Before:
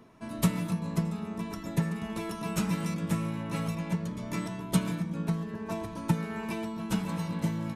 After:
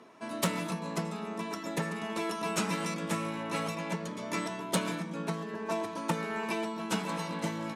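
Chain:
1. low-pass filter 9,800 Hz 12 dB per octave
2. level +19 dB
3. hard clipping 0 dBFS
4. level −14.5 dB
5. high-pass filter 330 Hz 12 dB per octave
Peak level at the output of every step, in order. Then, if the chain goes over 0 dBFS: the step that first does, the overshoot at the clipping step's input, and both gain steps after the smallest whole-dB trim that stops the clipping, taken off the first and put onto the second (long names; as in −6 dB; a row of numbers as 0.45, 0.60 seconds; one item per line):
−12.0, +7.0, 0.0, −14.5, −15.0 dBFS
step 2, 7.0 dB
step 2 +12 dB, step 4 −7.5 dB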